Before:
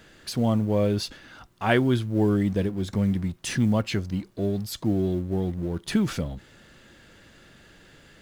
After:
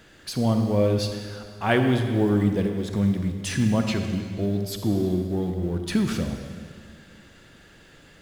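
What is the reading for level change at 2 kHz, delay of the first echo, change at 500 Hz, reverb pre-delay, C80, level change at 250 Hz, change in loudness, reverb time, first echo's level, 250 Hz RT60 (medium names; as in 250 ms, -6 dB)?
+1.0 dB, no echo, +1.5 dB, 37 ms, 6.5 dB, +1.5 dB, +1.5 dB, 2.0 s, no echo, 2.1 s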